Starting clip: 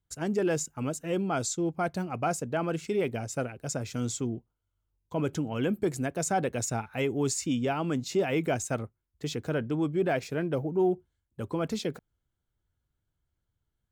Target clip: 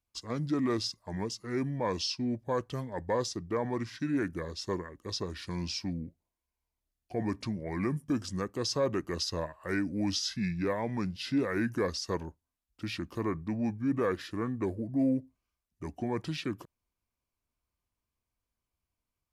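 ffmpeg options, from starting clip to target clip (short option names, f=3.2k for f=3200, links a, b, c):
-af "asetrate=31752,aresample=44100,lowshelf=f=130:g=-9,volume=-1dB"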